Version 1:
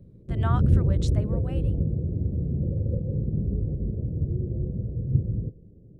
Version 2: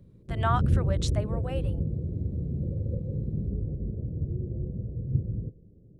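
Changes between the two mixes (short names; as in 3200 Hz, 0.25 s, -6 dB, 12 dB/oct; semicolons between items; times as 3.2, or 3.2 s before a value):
speech +5.0 dB; background -4.0 dB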